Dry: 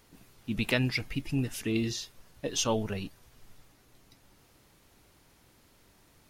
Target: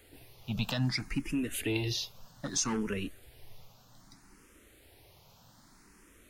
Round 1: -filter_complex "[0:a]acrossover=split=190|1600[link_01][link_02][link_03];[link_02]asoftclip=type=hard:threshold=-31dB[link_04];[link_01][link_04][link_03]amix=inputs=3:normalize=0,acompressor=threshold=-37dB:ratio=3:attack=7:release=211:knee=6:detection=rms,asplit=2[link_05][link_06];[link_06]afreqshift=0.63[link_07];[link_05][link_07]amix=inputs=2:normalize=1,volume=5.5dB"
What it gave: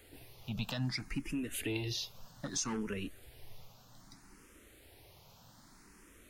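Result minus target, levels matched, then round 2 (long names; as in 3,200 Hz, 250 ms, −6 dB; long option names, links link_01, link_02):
downward compressor: peak gain reduction +5.5 dB
-filter_complex "[0:a]acrossover=split=190|1600[link_01][link_02][link_03];[link_02]asoftclip=type=hard:threshold=-31dB[link_04];[link_01][link_04][link_03]amix=inputs=3:normalize=0,acompressor=threshold=-29dB:ratio=3:attack=7:release=211:knee=6:detection=rms,asplit=2[link_05][link_06];[link_06]afreqshift=0.63[link_07];[link_05][link_07]amix=inputs=2:normalize=1,volume=5.5dB"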